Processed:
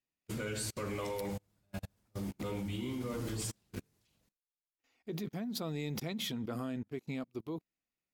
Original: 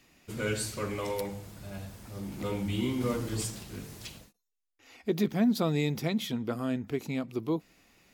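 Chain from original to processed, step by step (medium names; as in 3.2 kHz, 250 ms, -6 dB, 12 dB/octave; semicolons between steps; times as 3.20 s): level held to a coarse grid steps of 20 dB; upward expansion 2.5:1, over -52 dBFS; trim +4 dB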